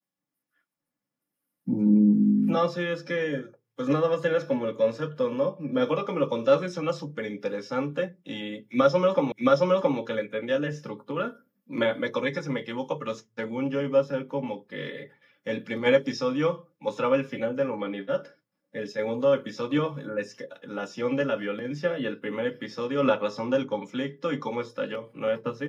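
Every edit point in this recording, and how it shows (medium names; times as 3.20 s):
9.32 s: repeat of the last 0.67 s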